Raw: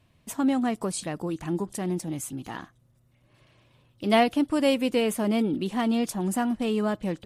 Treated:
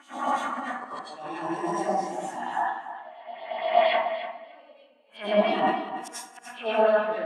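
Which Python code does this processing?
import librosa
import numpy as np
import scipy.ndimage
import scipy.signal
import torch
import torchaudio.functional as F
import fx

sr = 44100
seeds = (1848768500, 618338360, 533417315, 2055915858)

y = fx.spec_swells(x, sr, rise_s=2.17)
y = scipy.signal.sosfilt(scipy.signal.butter(4, 100.0, 'highpass', fs=sr, output='sos'), y)
y = fx.wah_lfo(y, sr, hz=4.3, low_hz=720.0, high_hz=3800.0, q=2.0)
y = fx.leveller(y, sr, passes=2, at=(4.05, 4.74))
y = fx.riaa(y, sr, side='recording', at=(5.57, 6.15), fade=0.02)
y = fx.gate_flip(y, sr, shuts_db=-23.0, range_db=-33)
y = fx.echo_feedback(y, sr, ms=294, feedback_pct=25, wet_db=-8)
y = fx.rev_plate(y, sr, seeds[0], rt60_s=0.84, hf_ratio=0.6, predelay_ms=80, drr_db=-7.5)
y = fx.spectral_expand(y, sr, expansion=1.5)
y = y * librosa.db_to_amplitude(6.0)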